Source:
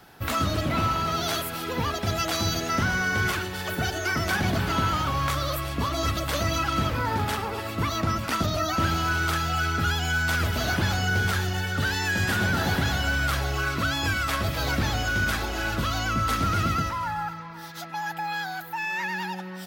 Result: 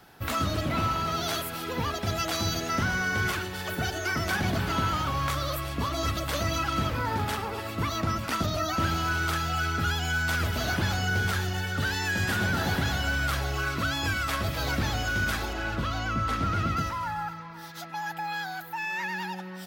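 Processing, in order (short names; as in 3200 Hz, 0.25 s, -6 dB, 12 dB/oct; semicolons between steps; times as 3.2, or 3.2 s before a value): 15.53–16.77 LPF 3000 Hz 6 dB/oct; gain -2.5 dB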